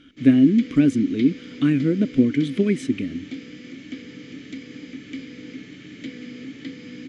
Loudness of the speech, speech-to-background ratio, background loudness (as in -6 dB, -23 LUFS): -20.0 LUFS, 17.5 dB, -37.5 LUFS